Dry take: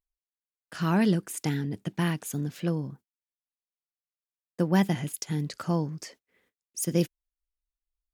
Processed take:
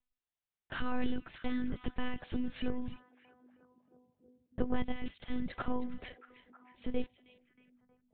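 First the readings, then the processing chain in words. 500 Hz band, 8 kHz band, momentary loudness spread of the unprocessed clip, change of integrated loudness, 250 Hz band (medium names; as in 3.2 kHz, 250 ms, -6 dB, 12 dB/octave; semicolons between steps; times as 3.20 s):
-9.5 dB, under -40 dB, 12 LU, -10.5 dB, -9.0 dB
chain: compression 2:1, threshold -36 dBFS, peak gain reduction 10 dB; monotone LPC vocoder at 8 kHz 250 Hz; repeats whose band climbs or falls 316 ms, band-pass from 2.9 kHz, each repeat -0.7 oct, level -12 dB; trim +2.5 dB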